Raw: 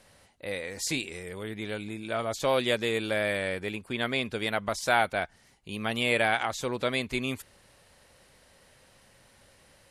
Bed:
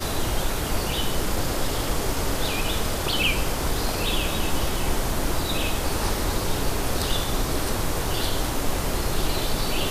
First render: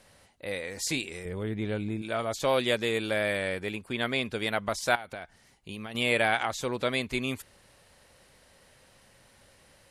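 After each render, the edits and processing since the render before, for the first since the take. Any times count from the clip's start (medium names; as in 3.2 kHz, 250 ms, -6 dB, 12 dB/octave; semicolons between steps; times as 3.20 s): 1.25–2.02 s: tilt EQ -2.5 dB/octave; 4.95–5.95 s: compression 20:1, threshold -34 dBFS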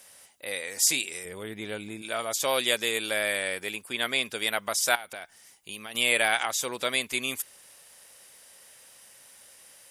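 RIAA curve recording; band-stop 4.2 kHz, Q 10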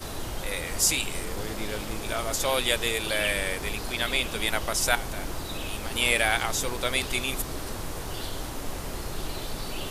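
add bed -9 dB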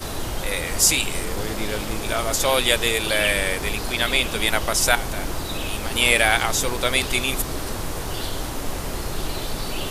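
trim +6 dB; peak limiter -2 dBFS, peak gain reduction 1 dB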